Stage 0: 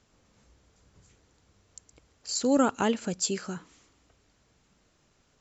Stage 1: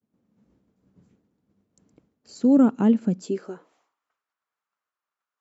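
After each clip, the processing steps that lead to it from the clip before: expander -57 dBFS; tilt EQ -4 dB/octave; high-pass sweep 210 Hz -> 1.2 kHz, 3.16–4.03 s; trim -5 dB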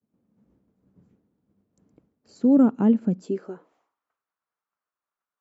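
treble shelf 2.2 kHz -10.5 dB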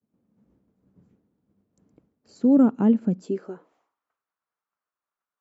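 no audible change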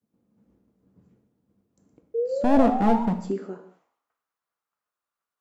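one-sided wavefolder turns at -19 dBFS; painted sound rise, 2.14–3.03 s, 450–960 Hz -28 dBFS; gated-style reverb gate 250 ms falling, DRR 5 dB

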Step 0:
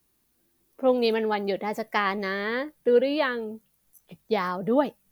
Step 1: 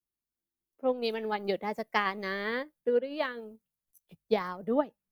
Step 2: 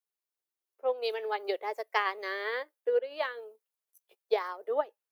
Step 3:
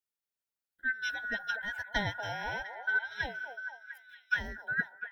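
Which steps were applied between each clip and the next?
transient shaper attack +3 dB, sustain -9 dB; gain riding 0.5 s; three bands expanded up and down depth 40%; trim -6.5 dB
elliptic high-pass 400 Hz, stop band 70 dB
split-band scrambler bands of 1 kHz; repeats whose band climbs or falls 233 ms, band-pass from 640 Hz, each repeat 0.7 oct, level -5 dB; trim -3 dB

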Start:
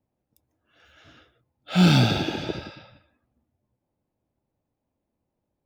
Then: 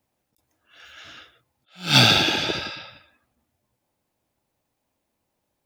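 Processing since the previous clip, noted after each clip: tilt shelf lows -7.5 dB, about 810 Hz; attacks held to a fixed rise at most 180 dB/s; trim +6 dB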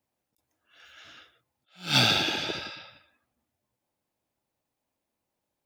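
bass shelf 120 Hz -4.5 dB; trim -6.5 dB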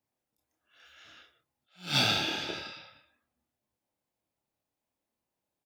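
doubling 28 ms -4.5 dB; trim -5.5 dB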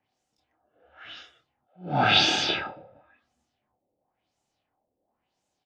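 in parallel at +1.5 dB: peak limiter -20.5 dBFS, peak gain reduction 8 dB; on the sum: LFO low-pass sine 0.96 Hz 460–7300 Hz; small resonant body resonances 750/3000 Hz, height 9 dB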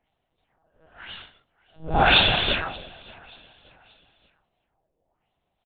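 feedback delay 580 ms, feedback 39%, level -23.5 dB; monotone LPC vocoder at 8 kHz 160 Hz; trim +4 dB

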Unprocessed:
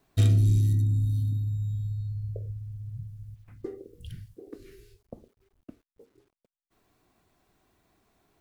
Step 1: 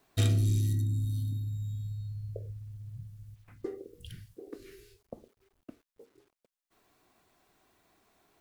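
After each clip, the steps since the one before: bass shelf 250 Hz -9.5 dB; trim +2.5 dB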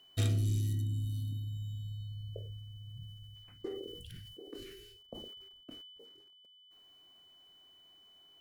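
whistle 3 kHz -54 dBFS; decay stretcher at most 33 dB/s; trim -4.5 dB

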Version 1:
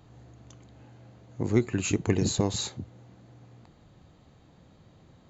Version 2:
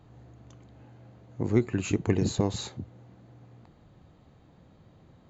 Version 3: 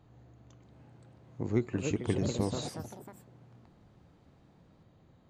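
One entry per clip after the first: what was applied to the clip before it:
treble shelf 3.6 kHz -8.5 dB
ever faster or slower copies 626 ms, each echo +4 st, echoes 3, each echo -6 dB; trim -5.5 dB

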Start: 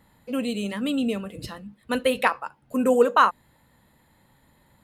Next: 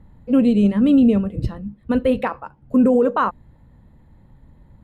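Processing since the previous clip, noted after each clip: tilt EQ -4.5 dB/octave; peak limiter -13 dBFS, peak gain reduction 11.5 dB; upward expansion 1.5:1, over -29 dBFS; trim +5.5 dB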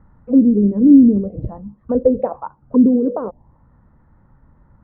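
touch-sensitive low-pass 320–1400 Hz down, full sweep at -11.5 dBFS; trim -3 dB

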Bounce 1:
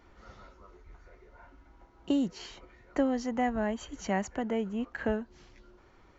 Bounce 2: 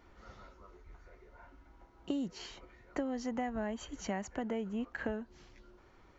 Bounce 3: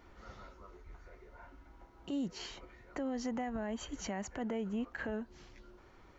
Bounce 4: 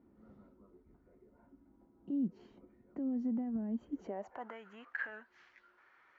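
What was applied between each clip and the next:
compression 6:1, threshold -30 dBFS, peak gain reduction 8 dB; trim -2 dB
peak limiter -31.5 dBFS, peak gain reduction 8.5 dB; trim +2 dB
Chebyshev shaper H 7 -37 dB, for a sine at -29 dBFS; band-pass sweep 230 Hz -> 1.7 kHz, 3.87–4.61 s; trim +4.5 dB

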